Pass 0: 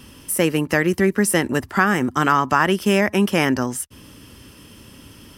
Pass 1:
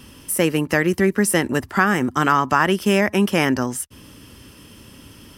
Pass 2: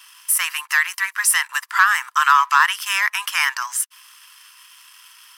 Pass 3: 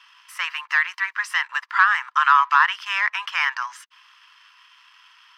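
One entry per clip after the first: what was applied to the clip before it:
nothing audible
sample leveller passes 1; Chebyshev high-pass 1000 Hz, order 5; gain +2.5 dB
air absorption 220 m

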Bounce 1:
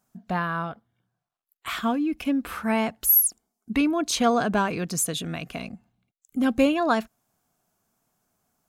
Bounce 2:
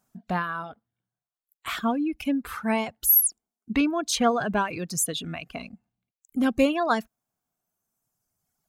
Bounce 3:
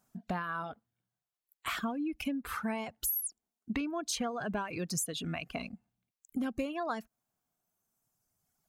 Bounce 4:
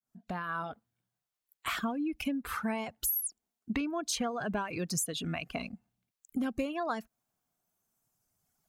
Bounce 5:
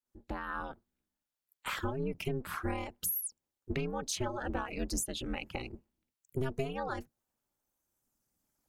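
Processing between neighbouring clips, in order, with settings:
reverb removal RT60 1.8 s
dynamic EQ 3600 Hz, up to -5 dB, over -53 dBFS, Q 7.8; compressor 12:1, threshold -30 dBFS, peak gain reduction 16 dB; gain -1 dB
opening faded in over 0.53 s; gain +1.5 dB
octaver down 1 oct, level -2 dB; ring modulator 130 Hz

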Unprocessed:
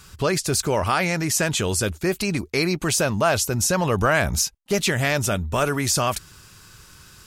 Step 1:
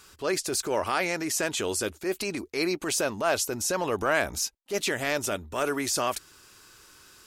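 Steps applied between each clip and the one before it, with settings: resonant low shelf 220 Hz -10 dB, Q 1.5; transient shaper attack -7 dB, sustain -1 dB; gain -4.5 dB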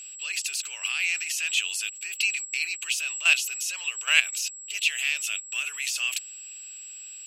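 whine 7700 Hz -35 dBFS; level quantiser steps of 12 dB; resonant high-pass 2700 Hz, resonance Q 8.6; gain +5 dB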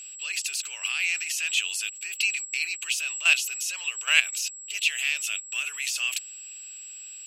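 nothing audible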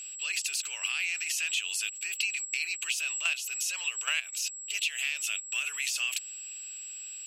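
compressor 6:1, threshold -27 dBFS, peak gain reduction 13.5 dB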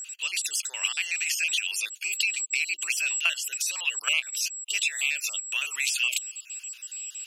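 random spectral dropouts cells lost 32%; gain +5.5 dB

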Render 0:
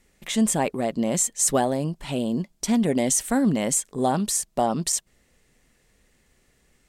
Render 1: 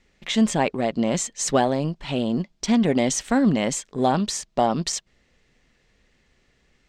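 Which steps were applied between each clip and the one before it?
high shelf 2900 Hz +11 dB; in parallel at -8 dB: crossover distortion -29.5 dBFS; on the sum: air absorption 190 m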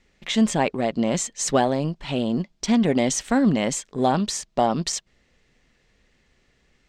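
nothing audible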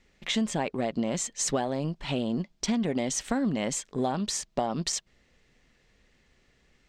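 compressor 5:1, threshold -23 dBFS, peak gain reduction 9 dB; gain -1.5 dB

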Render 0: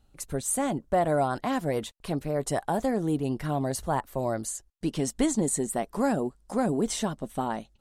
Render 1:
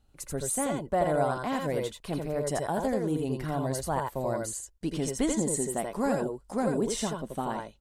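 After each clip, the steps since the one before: tapped delay 82/84 ms -8.5/-4 dB; gain -3 dB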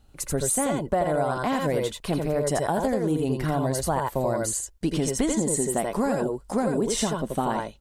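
compressor, threshold -29 dBFS, peak gain reduction 8 dB; gain +8.5 dB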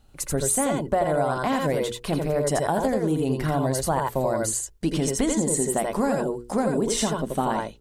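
notches 60/120/180/240/300/360/420/480 Hz; gain +1.5 dB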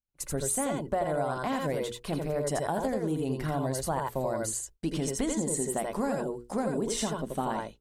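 expander -35 dBFS; gain -6.5 dB

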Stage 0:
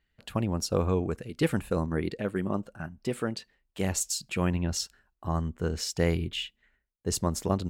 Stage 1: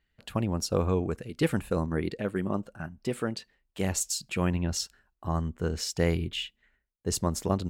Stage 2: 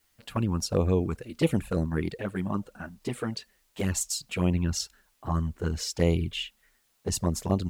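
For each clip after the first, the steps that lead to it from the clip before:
nothing audible
added noise white -70 dBFS; envelope flanger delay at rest 9.6 ms, full sweep at -21.5 dBFS; gain +3 dB

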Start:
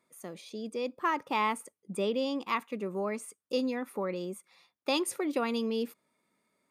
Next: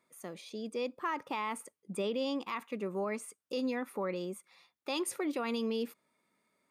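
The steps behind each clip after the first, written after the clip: bell 1700 Hz +2.5 dB 2.7 oct; limiter -24 dBFS, peak gain reduction 8.5 dB; gain -2 dB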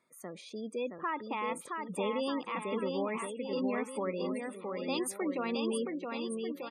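bouncing-ball echo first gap 0.67 s, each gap 0.85×, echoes 5; spectral gate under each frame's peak -25 dB strong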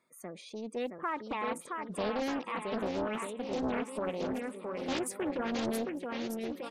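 swung echo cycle 0.904 s, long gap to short 3:1, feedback 42%, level -21.5 dB; Doppler distortion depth 0.7 ms

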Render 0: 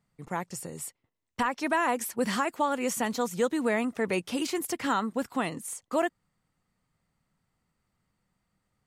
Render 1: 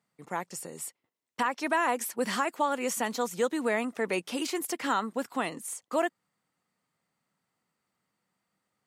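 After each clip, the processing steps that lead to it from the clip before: Bessel high-pass 270 Hz, order 2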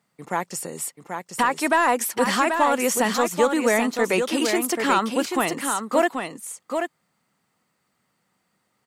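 soft clip -15.5 dBFS, distortion -23 dB; on a send: echo 0.784 s -6 dB; on the sum: gain +8.5 dB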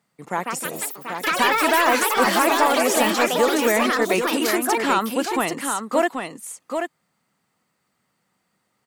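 echoes that change speed 0.227 s, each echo +5 st, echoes 3

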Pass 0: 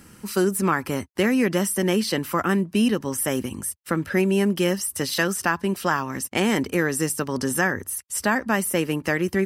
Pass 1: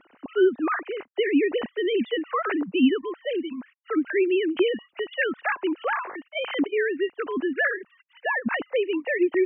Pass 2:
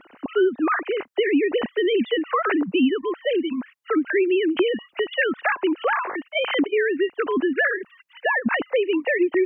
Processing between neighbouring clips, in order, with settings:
sine-wave speech; gain -2 dB
compressor 2.5:1, threshold -27 dBFS, peak gain reduction 9 dB; gain +7.5 dB

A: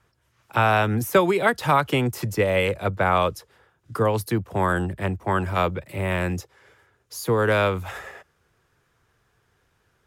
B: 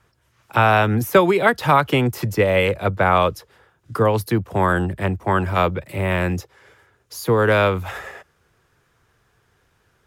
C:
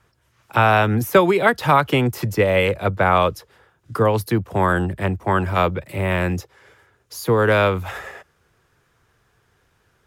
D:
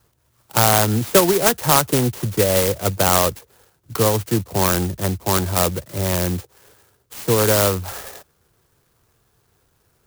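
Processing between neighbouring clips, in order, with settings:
dynamic EQ 8300 Hz, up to -5 dB, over -49 dBFS, Q 1; gain +4 dB
nothing audible
clock jitter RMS 0.13 ms

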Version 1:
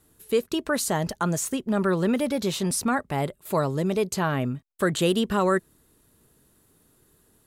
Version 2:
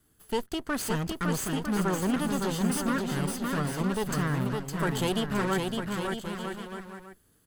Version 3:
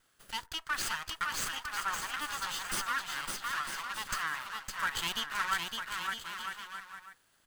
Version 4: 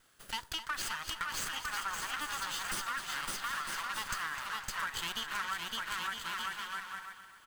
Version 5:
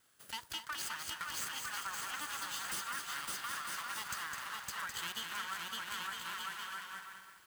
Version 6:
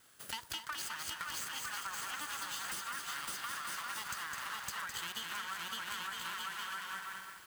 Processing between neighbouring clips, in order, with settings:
minimum comb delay 0.63 ms; on a send: bouncing-ball echo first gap 0.56 s, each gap 0.7×, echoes 5; on the sum: gain -4.5 dB
HPF 1100 Hz 24 dB/oct; on a send at -16.5 dB: reverb RT60 0.35 s, pre-delay 4 ms; on the sum: running maximum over 3 samples; gain +2 dB
compressor, threshold -38 dBFS, peak gain reduction 11.5 dB; on a send: feedback echo 0.256 s, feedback 48%, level -12 dB; on the sum: gain +4 dB
HPF 74 Hz; high shelf 7300 Hz +6 dB; lo-fi delay 0.208 s, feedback 35%, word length 9-bit, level -5.5 dB; gain -5.5 dB
compressor, threshold -45 dBFS, peak gain reduction 9.5 dB; gain +7 dB

